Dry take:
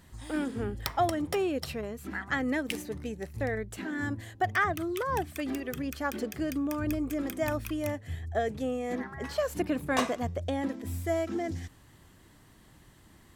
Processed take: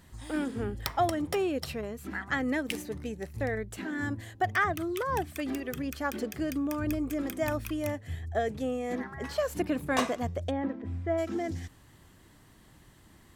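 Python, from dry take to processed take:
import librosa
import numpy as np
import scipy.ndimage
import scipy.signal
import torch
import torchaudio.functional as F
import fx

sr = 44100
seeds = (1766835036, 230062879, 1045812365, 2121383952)

y = fx.lowpass(x, sr, hz=1900.0, slope=12, at=(10.5, 11.17), fade=0.02)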